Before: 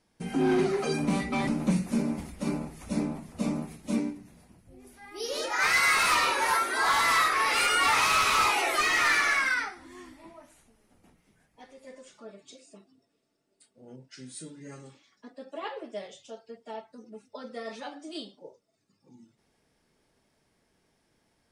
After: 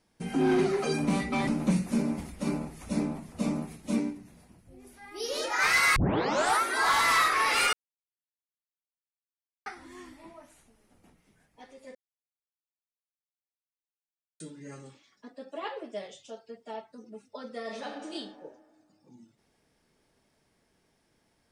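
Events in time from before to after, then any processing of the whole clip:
5.96 s: tape start 0.65 s
7.73–9.66 s: mute
11.95–14.40 s: mute
17.60–18.10 s: reverb throw, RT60 1.8 s, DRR 3 dB

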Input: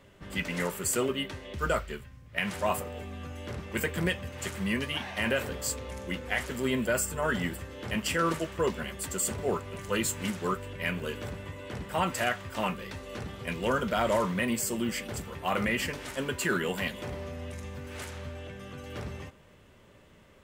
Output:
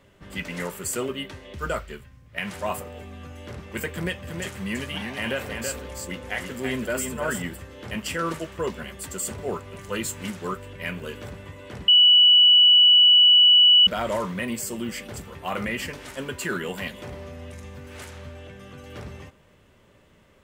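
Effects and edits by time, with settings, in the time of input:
3.94–7.42 s: delay 330 ms -5 dB
11.88–13.87 s: bleep 2.95 kHz -11 dBFS

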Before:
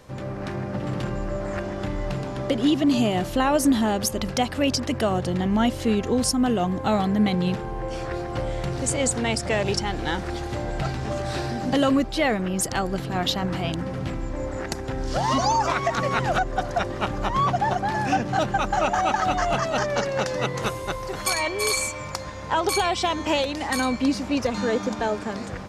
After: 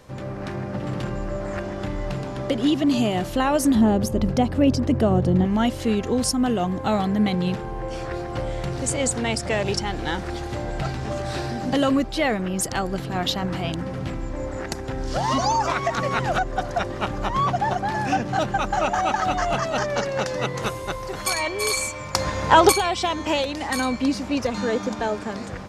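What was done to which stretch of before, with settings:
3.75–5.45 s: tilt shelf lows +8 dB, about 770 Hz
22.15–22.72 s: gain +9.5 dB

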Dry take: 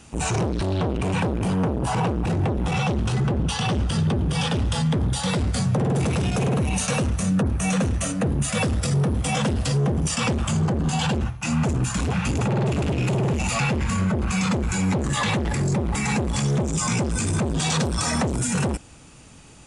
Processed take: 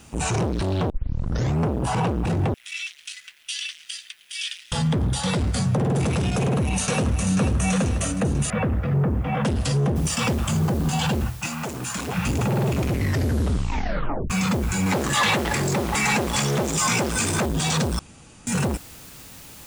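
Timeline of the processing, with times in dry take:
0.90 s: tape start 0.80 s
2.54–4.72 s: steep high-pass 2 kHz
6.38–7.22 s: echo throw 490 ms, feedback 55%, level -7.5 dB
8.50–9.45 s: low-pass 2.2 kHz 24 dB/octave
9.96 s: noise floor step -65 dB -45 dB
11.46–12.16 s: high-pass 750 Hz -> 270 Hz 6 dB/octave
12.70 s: tape stop 1.60 s
14.86–17.46 s: overdrive pedal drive 14 dB, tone 6.6 kHz, clips at -11.5 dBFS
17.99–18.47 s: room tone

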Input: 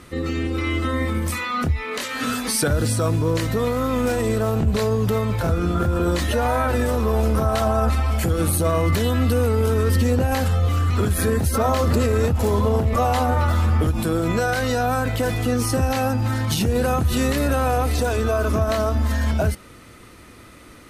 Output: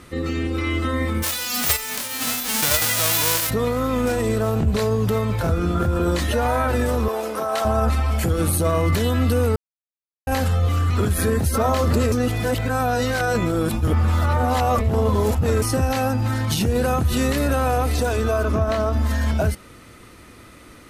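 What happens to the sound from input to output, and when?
1.22–3.49 s: formants flattened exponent 0.1
7.08–7.65 s: high-pass 400 Hz
9.56–10.27 s: mute
12.12–15.62 s: reverse
18.43–18.93 s: low-pass 3.7 kHz 6 dB/octave

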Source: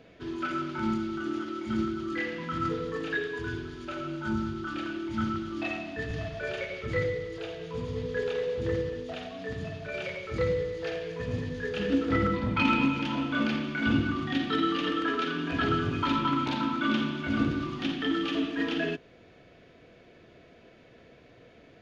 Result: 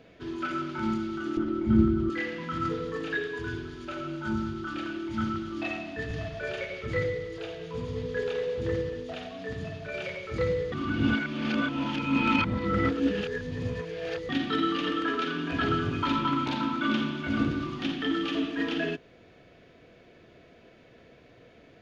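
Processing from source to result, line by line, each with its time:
1.37–2.10 s: tilt EQ -4 dB/octave
10.72–14.29 s: reverse

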